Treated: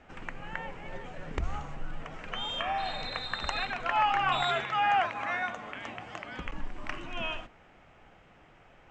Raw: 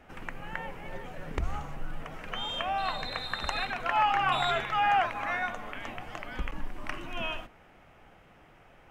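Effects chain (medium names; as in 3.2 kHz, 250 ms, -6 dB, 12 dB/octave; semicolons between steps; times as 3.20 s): Chebyshev low-pass 7.7 kHz, order 4; 2.64–3.07 s: spectral replace 890–2800 Hz both; 4.44–6.46 s: high-pass 85 Hz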